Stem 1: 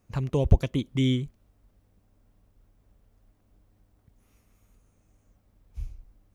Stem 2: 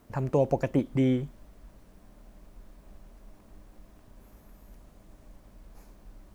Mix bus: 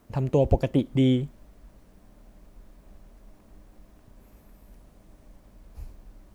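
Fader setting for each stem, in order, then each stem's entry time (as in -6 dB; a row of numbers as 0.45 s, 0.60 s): -5.0 dB, -0.5 dB; 0.00 s, 0.00 s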